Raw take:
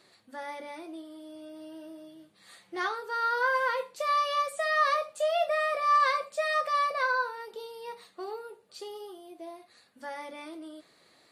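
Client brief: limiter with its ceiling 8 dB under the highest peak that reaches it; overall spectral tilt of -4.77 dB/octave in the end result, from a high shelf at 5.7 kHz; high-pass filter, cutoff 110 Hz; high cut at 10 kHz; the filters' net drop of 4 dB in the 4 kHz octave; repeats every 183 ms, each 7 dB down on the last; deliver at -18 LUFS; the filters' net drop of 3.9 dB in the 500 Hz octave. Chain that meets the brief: high-pass 110 Hz; low-pass 10 kHz; peaking EQ 500 Hz -5 dB; peaking EQ 4 kHz -7.5 dB; treble shelf 5.7 kHz +7 dB; peak limiter -24 dBFS; feedback delay 183 ms, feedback 45%, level -7 dB; trim +14 dB

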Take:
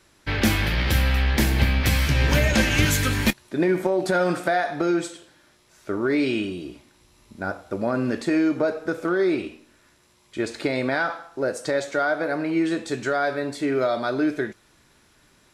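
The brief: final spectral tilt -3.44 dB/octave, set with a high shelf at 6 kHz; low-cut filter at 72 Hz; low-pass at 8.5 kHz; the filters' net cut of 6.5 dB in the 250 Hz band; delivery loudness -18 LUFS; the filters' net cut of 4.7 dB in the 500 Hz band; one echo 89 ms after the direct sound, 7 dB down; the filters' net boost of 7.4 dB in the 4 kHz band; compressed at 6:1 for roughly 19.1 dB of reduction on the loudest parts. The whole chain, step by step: high-pass 72 Hz; low-pass 8.5 kHz; peaking EQ 250 Hz -7.5 dB; peaking EQ 500 Hz -4 dB; peaking EQ 4 kHz +7 dB; treble shelf 6 kHz +8 dB; compression 6:1, threshold -37 dBFS; delay 89 ms -7 dB; trim +20 dB

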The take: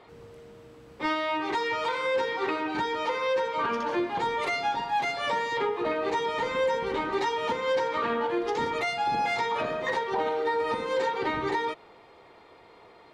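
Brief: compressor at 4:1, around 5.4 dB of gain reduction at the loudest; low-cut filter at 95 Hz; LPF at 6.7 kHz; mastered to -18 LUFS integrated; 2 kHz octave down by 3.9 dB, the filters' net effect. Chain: high-pass 95 Hz; low-pass 6.7 kHz; peaking EQ 2 kHz -4.5 dB; compression 4:1, threshold -30 dBFS; trim +15 dB

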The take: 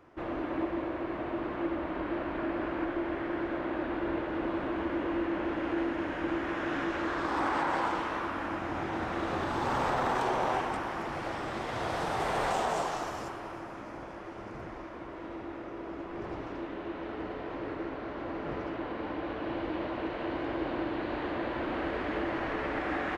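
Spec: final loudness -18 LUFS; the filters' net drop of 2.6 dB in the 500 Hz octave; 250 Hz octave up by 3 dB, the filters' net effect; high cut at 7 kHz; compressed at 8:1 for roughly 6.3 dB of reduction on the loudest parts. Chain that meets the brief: low-pass 7 kHz; peaking EQ 250 Hz +8.5 dB; peaking EQ 500 Hz -8.5 dB; compression 8:1, threshold -33 dBFS; trim +20 dB

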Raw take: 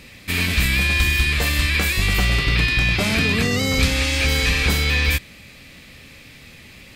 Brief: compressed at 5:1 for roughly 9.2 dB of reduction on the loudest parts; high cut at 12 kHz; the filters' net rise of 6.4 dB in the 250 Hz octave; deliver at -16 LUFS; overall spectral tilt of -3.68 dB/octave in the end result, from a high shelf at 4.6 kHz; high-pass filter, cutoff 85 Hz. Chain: high-pass 85 Hz; low-pass 12 kHz; peaking EQ 250 Hz +8 dB; treble shelf 4.6 kHz -7 dB; compression 5:1, threshold -23 dBFS; trim +9.5 dB

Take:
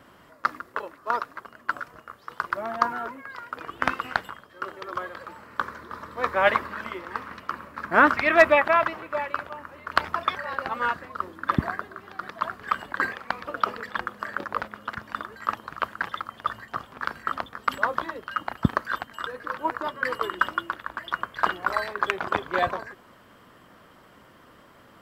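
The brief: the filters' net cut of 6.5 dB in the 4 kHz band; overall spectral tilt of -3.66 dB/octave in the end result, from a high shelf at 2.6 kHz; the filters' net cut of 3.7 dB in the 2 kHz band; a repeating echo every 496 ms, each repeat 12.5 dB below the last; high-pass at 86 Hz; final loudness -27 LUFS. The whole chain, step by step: high-pass 86 Hz; peaking EQ 2 kHz -3 dB; treble shelf 2.6 kHz -3 dB; peaking EQ 4 kHz -5 dB; feedback delay 496 ms, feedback 24%, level -12.5 dB; trim +2.5 dB

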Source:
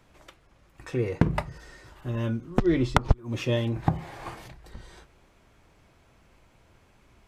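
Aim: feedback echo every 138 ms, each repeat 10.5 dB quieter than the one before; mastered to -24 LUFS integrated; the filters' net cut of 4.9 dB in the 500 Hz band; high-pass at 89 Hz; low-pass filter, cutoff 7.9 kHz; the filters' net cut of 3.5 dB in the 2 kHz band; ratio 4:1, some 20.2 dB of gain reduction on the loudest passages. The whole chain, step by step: high-pass 89 Hz; low-pass 7.9 kHz; peaking EQ 500 Hz -7 dB; peaking EQ 2 kHz -4 dB; compression 4:1, threshold -46 dBFS; feedback delay 138 ms, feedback 30%, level -10.5 dB; trim +24.5 dB

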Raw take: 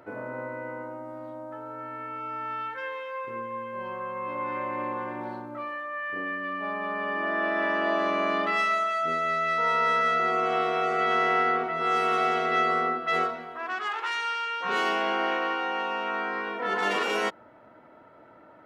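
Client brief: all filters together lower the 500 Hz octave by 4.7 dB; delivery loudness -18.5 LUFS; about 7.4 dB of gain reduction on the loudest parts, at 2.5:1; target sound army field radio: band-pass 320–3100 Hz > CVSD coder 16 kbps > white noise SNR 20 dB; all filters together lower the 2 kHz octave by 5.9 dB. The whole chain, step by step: peaking EQ 500 Hz -5 dB; peaking EQ 2 kHz -6 dB; compression 2.5:1, threshold -36 dBFS; band-pass 320–3100 Hz; CVSD coder 16 kbps; white noise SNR 20 dB; trim +19 dB

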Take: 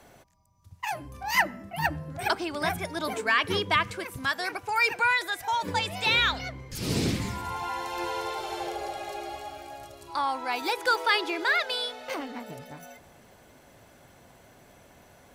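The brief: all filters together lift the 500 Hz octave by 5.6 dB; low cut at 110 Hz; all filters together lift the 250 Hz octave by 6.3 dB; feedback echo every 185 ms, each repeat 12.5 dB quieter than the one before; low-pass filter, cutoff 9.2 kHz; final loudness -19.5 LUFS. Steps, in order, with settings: high-pass 110 Hz; low-pass 9.2 kHz; peaking EQ 250 Hz +7 dB; peaking EQ 500 Hz +5 dB; feedback delay 185 ms, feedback 24%, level -12.5 dB; trim +7 dB

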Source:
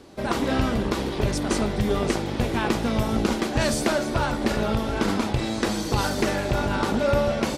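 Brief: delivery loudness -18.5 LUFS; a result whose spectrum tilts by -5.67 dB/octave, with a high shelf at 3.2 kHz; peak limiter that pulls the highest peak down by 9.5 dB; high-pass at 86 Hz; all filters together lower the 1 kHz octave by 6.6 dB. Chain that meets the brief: high-pass 86 Hz; peaking EQ 1 kHz -8 dB; treble shelf 3.2 kHz -8 dB; trim +11 dB; peak limiter -9 dBFS

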